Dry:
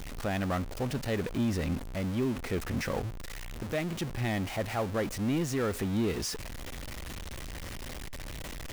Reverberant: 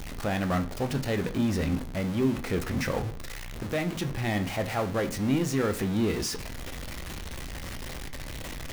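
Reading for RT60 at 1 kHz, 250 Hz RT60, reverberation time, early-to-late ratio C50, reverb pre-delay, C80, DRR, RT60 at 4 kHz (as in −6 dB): 0.40 s, 0.55 s, 0.40 s, 15.5 dB, 15 ms, 20.0 dB, 7.0 dB, 0.50 s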